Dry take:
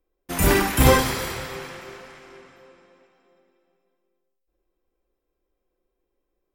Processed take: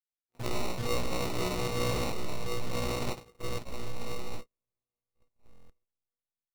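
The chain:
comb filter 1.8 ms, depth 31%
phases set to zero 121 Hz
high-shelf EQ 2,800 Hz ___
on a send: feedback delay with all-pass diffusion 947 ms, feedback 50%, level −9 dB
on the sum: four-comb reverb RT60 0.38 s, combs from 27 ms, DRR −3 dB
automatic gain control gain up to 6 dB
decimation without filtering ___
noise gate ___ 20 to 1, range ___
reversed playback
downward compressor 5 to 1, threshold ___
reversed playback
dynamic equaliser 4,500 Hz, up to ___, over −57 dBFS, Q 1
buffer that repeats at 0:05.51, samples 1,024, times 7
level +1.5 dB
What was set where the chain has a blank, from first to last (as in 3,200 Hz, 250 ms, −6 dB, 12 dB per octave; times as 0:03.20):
−6 dB, 27×, −29 dBFS, −57 dB, −29 dBFS, +5 dB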